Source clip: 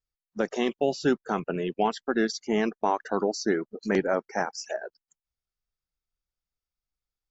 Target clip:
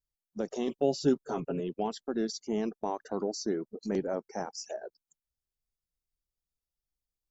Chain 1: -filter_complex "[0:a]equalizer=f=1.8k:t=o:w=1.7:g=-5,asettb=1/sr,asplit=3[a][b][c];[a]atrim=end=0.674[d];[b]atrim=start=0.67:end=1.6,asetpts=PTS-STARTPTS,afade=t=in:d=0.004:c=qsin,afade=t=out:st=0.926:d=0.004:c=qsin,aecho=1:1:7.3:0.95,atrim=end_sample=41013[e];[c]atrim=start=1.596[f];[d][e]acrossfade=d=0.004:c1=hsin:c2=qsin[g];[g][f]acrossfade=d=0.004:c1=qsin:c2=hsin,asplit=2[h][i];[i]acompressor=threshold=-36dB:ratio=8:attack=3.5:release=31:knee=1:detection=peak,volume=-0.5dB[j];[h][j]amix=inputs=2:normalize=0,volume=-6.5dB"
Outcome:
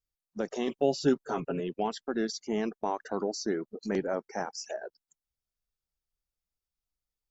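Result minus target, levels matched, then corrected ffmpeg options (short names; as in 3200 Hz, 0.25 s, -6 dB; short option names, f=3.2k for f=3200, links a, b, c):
2000 Hz band +6.0 dB
-filter_complex "[0:a]equalizer=f=1.8k:t=o:w=1.7:g=-13,asettb=1/sr,asplit=3[a][b][c];[a]atrim=end=0.674[d];[b]atrim=start=0.67:end=1.6,asetpts=PTS-STARTPTS,afade=t=in:d=0.004:c=qsin,afade=t=out:st=0.926:d=0.004:c=qsin,aecho=1:1:7.3:0.95,atrim=end_sample=41013[e];[c]atrim=start=1.596[f];[d][e]acrossfade=d=0.004:c1=hsin:c2=qsin[g];[g][f]acrossfade=d=0.004:c1=qsin:c2=hsin,asplit=2[h][i];[i]acompressor=threshold=-36dB:ratio=8:attack=3.5:release=31:knee=1:detection=peak,volume=-0.5dB[j];[h][j]amix=inputs=2:normalize=0,volume=-6.5dB"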